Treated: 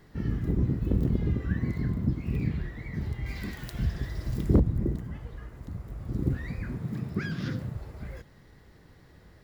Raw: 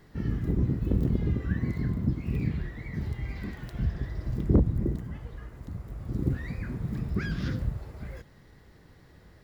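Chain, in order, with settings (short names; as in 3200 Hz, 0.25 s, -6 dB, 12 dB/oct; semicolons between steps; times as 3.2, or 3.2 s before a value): 3.26–4.6 high shelf 2900 Hz +11.5 dB; 6.8–7.75 HPF 100 Hz 24 dB/oct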